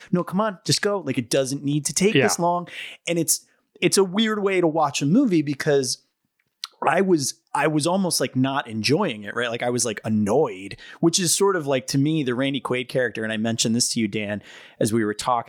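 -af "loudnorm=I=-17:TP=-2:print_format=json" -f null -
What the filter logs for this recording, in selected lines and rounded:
"input_i" : "-22.2",
"input_tp" : "-4.9",
"input_lra" : "2.2",
"input_thresh" : "-32.5",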